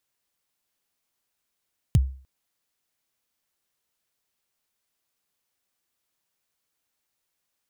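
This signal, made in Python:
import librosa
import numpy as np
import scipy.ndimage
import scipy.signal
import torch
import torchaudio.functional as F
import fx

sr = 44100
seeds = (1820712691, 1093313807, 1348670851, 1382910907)

y = fx.drum_kick(sr, seeds[0], length_s=0.3, level_db=-11.0, start_hz=160.0, end_hz=66.0, sweep_ms=33.0, decay_s=0.42, click=True)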